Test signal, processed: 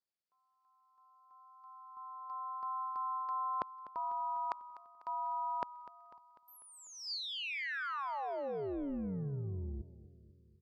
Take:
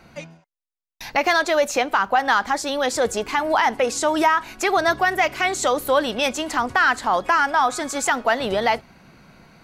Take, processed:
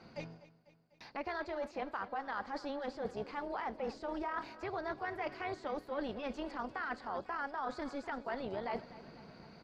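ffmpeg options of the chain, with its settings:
ffmpeg -i in.wav -filter_complex "[0:a]highpass=250,aemphasis=mode=reproduction:type=riaa,acrossover=split=3200[link_01][link_02];[link_02]acompressor=threshold=-51dB:ratio=4:attack=1:release=60[link_03];[link_01][link_03]amix=inputs=2:normalize=0,equalizer=frequency=4700:width=3.5:gain=14.5,areverse,acompressor=threshold=-30dB:ratio=6,areverse,tremolo=f=280:d=0.667,asplit=2[link_04][link_05];[link_05]aecho=0:1:248|496|744|992|1240|1488:0.141|0.0833|0.0492|0.029|0.0171|0.0101[link_06];[link_04][link_06]amix=inputs=2:normalize=0,volume=-4.5dB" out.wav

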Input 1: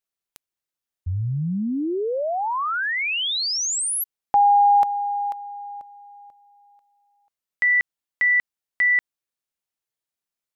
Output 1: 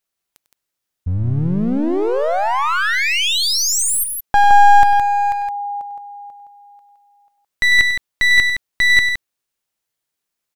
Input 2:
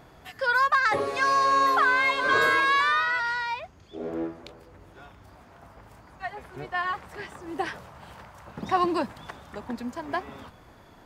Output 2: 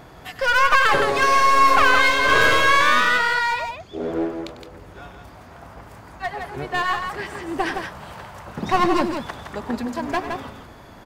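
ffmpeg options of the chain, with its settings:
ffmpeg -i in.wav -af "aeval=exprs='clip(val(0),-1,0.0376)':channel_layout=same,aecho=1:1:98|166:0.211|0.501,volume=7.5dB" out.wav

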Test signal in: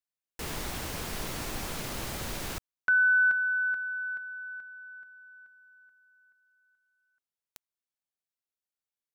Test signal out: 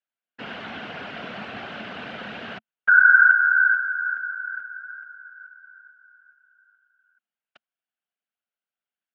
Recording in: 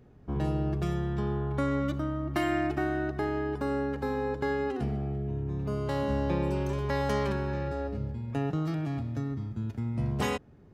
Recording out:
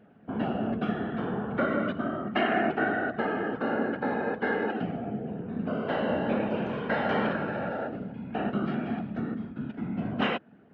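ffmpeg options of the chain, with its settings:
ffmpeg -i in.wav -af "afftfilt=real='hypot(re,im)*cos(2*PI*random(0))':imag='hypot(re,im)*sin(2*PI*random(1))':win_size=512:overlap=0.75,highpass=200,equalizer=frequency=220:width_type=q:width=4:gain=7,equalizer=frequency=350:width_type=q:width=4:gain=-4,equalizer=frequency=700:width_type=q:width=4:gain=6,equalizer=frequency=1000:width_type=q:width=4:gain=-3,equalizer=frequency=1500:width_type=q:width=4:gain=9,equalizer=frequency=2900:width_type=q:width=4:gain=6,lowpass=frequency=3300:width=0.5412,lowpass=frequency=3300:width=1.3066,volume=7dB" out.wav

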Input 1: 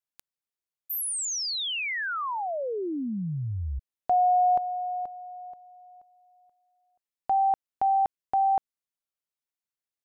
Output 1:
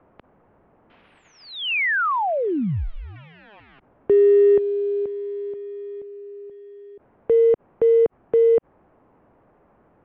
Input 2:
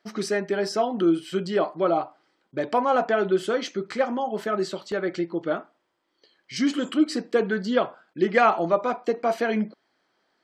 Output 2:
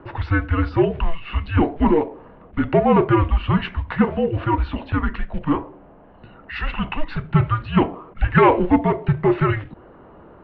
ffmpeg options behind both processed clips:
ffmpeg -i in.wav -filter_complex "[0:a]acrossover=split=240|1200[link_01][link_02][link_03];[link_02]acompressor=mode=upward:threshold=-32dB:ratio=2.5:attack=0.42:release=27:knee=2.83:detection=peak[link_04];[link_01][link_04][link_03]amix=inputs=3:normalize=0,acrusher=bits=6:mode=log:mix=0:aa=0.000001,asoftclip=type=tanh:threshold=-13dB,highpass=frequency=360:width_type=q:width=0.5412,highpass=frequency=360:width_type=q:width=1.307,lowpass=frequency=3200:width_type=q:width=0.5176,lowpass=frequency=3200:width_type=q:width=0.7071,lowpass=frequency=3200:width_type=q:width=1.932,afreqshift=-320,volume=8dB" out.wav

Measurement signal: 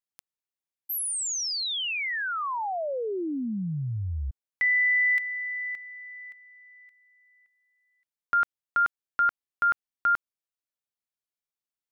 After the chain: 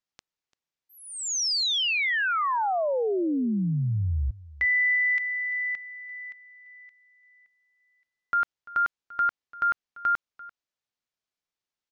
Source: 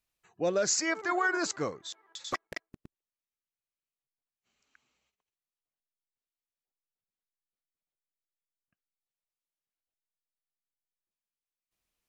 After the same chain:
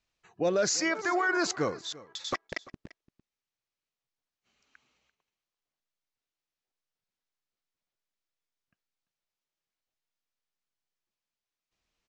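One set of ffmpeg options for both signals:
ffmpeg -i in.wav -af "lowpass=frequency=6600:width=0.5412,lowpass=frequency=6600:width=1.3066,alimiter=limit=-24dB:level=0:latency=1:release=28,aecho=1:1:342:0.106,volume=4.5dB" out.wav

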